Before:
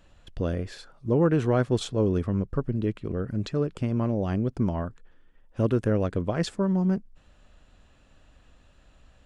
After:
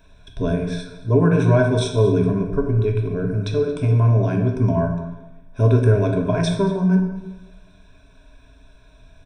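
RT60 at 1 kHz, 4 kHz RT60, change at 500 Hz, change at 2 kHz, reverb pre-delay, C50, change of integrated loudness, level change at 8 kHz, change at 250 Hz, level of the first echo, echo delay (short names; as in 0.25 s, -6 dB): 1.1 s, 0.80 s, +7.5 dB, +9.5 dB, 3 ms, 5.0 dB, +7.5 dB, n/a, +5.5 dB, -18.5 dB, 0.225 s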